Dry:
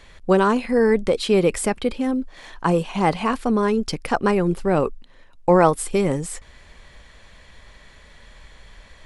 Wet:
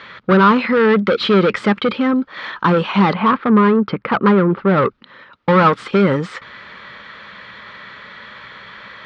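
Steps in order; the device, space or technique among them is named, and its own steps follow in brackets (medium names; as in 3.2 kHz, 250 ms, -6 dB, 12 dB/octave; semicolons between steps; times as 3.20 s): 3.13–4.78 s: Bessel low-pass 1.4 kHz, order 2; overdrive pedal into a guitar cabinet (overdrive pedal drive 24 dB, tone 7.2 kHz, clips at -3.5 dBFS; cabinet simulation 90–3800 Hz, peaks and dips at 120 Hz +9 dB, 200 Hz +9 dB, 720 Hz -8 dB, 1.3 kHz +9 dB, 2.7 kHz -4 dB); trim -3 dB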